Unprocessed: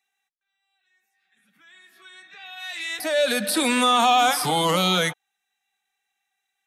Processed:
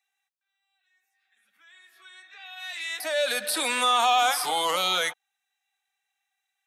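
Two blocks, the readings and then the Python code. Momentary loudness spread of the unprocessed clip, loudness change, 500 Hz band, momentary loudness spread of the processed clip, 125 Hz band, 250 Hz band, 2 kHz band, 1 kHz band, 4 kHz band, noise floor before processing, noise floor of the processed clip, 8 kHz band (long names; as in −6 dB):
14 LU, −3.5 dB, −5.5 dB, 14 LU, below −20 dB, −16.0 dB, −2.5 dB, −3.5 dB, −2.5 dB, −80 dBFS, −83 dBFS, −2.5 dB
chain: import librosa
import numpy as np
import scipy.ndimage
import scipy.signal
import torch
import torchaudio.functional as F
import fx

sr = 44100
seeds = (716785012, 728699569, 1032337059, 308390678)

y = scipy.signal.sosfilt(scipy.signal.butter(2, 560.0, 'highpass', fs=sr, output='sos'), x)
y = y * 10.0 ** (-2.5 / 20.0)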